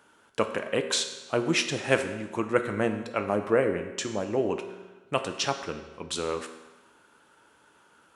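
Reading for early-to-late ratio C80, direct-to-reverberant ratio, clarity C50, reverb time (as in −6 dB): 11.0 dB, 6.5 dB, 9.5 dB, 1.2 s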